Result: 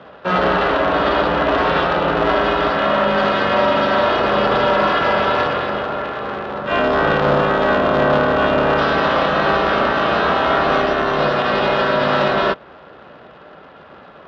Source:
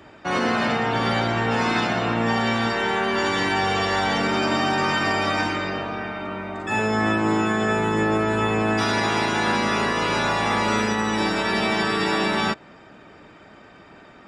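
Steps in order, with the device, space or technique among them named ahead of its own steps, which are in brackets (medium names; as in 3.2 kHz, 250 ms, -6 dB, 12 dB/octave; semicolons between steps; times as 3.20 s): ring modulator pedal into a guitar cabinet (polarity switched at an audio rate 180 Hz; cabinet simulation 87–3600 Hz, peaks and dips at 110 Hz -9 dB, 180 Hz +4 dB, 600 Hz +7 dB, 1.3 kHz +5 dB, 2.2 kHz -8 dB); trim +4.5 dB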